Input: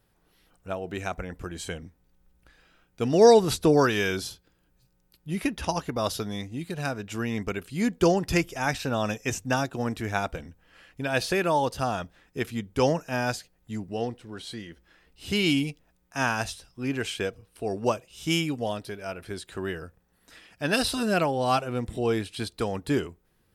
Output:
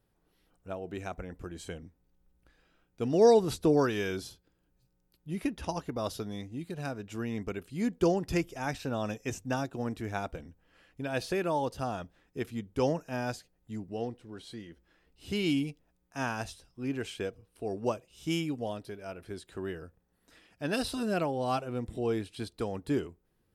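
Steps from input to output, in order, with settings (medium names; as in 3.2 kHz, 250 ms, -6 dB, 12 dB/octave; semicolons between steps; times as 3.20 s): FFT filter 200 Hz 0 dB, 300 Hz +2 dB, 1.7 kHz -4 dB; trim -5.5 dB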